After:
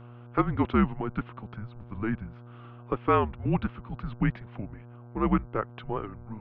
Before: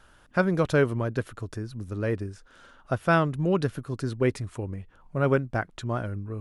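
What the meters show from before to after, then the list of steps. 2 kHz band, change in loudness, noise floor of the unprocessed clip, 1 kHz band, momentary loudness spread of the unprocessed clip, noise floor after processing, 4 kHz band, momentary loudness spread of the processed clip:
-8.0 dB, -2.0 dB, -57 dBFS, +1.0 dB, 13 LU, -47 dBFS, -6.5 dB, 17 LU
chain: mistuned SSB -220 Hz 270–3300 Hz; buzz 120 Hz, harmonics 13, -47 dBFS -8 dB/oct

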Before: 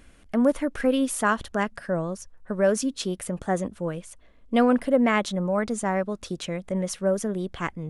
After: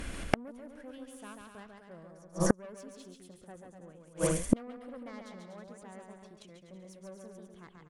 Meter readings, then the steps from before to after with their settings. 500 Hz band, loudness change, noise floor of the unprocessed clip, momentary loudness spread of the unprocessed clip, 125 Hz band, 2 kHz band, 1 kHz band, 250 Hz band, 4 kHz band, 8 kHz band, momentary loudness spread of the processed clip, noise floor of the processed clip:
-13.5 dB, -9.0 dB, -54 dBFS, 11 LU, -7.5 dB, -13.5 dB, -15.0 dB, -12.0 dB, -13.0 dB, -7.5 dB, 21 LU, -56 dBFS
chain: added harmonics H 4 -13 dB, 5 -15 dB, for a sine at -8 dBFS; bouncing-ball echo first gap 0.14 s, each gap 0.75×, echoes 5; flipped gate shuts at -17 dBFS, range -38 dB; gain +8 dB

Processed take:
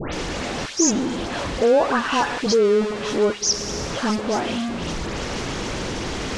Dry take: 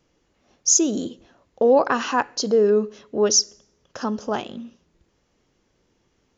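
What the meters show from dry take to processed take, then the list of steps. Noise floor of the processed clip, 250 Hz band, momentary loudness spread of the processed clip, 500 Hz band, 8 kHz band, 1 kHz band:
-29 dBFS, +3.0 dB, 10 LU, +1.0 dB, n/a, +2.0 dB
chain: zero-crossing step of -18 dBFS; Bessel low-pass 5700 Hz, order 6; dispersion highs, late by 0.137 s, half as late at 2300 Hz; gain -2.5 dB

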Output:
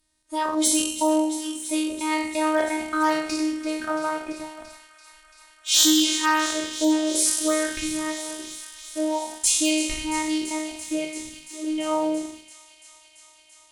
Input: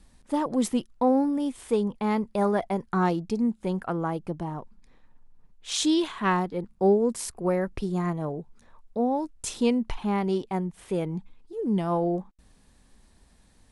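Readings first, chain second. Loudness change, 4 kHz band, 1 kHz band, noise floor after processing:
+4.0 dB, +12.5 dB, +2.5 dB, -55 dBFS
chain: spectral trails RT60 1.03 s; spectral noise reduction 14 dB; low shelf 440 Hz -5 dB; thin delay 0.338 s, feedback 83%, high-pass 2100 Hz, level -12.5 dB; in parallel at -5 dB: crossover distortion -45 dBFS; on the sum: robotiser 310 Hz; one-sided clip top -13 dBFS; high shelf 2400 Hz +8.5 dB; gain +2 dB

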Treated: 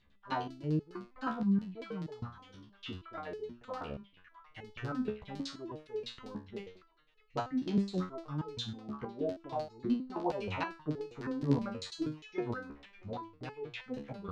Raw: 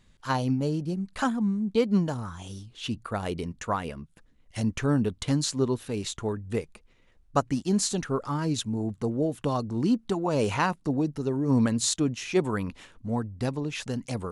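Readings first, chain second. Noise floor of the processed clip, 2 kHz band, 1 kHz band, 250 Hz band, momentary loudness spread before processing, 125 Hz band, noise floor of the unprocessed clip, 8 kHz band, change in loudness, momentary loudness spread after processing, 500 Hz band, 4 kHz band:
-65 dBFS, -9.5 dB, -8.5 dB, -9.5 dB, 9 LU, -11.0 dB, -61 dBFS, -25.5 dB, -10.0 dB, 14 LU, -10.0 dB, -10.5 dB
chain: delay with a stepping band-pass 0.632 s, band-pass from 1600 Hz, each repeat 0.7 oct, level -10.5 dB; LFO low-pass saw down 9.9 Hz 340–4600 Hz; stepped resonator 6.3 Hz 71–430 Hz

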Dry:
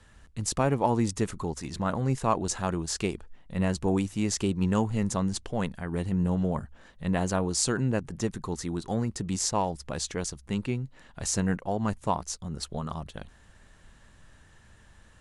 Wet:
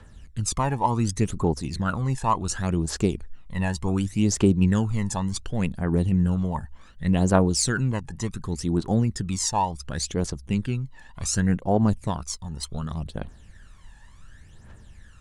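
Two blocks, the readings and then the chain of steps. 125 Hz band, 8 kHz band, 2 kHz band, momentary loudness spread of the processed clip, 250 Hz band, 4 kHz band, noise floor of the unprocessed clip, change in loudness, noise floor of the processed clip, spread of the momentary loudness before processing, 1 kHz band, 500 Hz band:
+6.0 dB, +2.5 dB, +3.5 dB, 12 LU, +4.5 dB, +3.0 dB, -57 dBFS, +4.0 dB, -49 dBFS, 9 LU, +3.5 dB, +2.0 dB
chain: phaser 0.68 Hz, delay 1.2 ms, feedback 68%

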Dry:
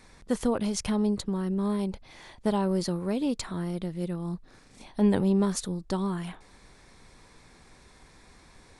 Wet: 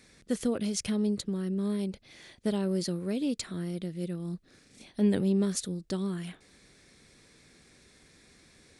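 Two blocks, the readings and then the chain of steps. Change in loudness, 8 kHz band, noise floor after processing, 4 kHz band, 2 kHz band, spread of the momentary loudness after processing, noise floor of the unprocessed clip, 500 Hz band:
-2.5 dB, 0.0 dB, -61 dBFS, -0.5 dB, -3.0 dB, 11 LU, -56 dBFS, -3.0 dB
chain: HPF 150 Hz 6 dB/oct; bell 930 Hz -14.5 dB 0.9 oct

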